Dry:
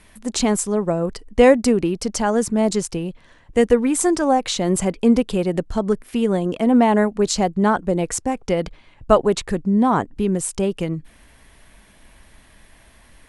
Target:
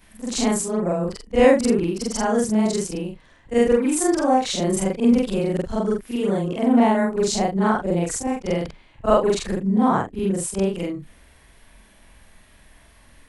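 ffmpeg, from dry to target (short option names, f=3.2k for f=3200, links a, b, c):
-af "afftfilt=real='re':imag='-im':win_size=4096:overlap=0.75,volume=2.5dB"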